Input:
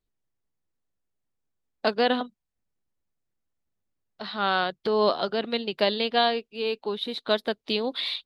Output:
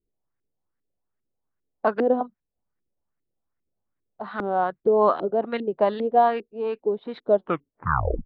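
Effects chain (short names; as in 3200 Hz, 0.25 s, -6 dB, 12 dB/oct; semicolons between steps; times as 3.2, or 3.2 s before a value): tape stop at the end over 0.95 s; LFO low-pass saw up 2.5 Hz 320–2000 Hz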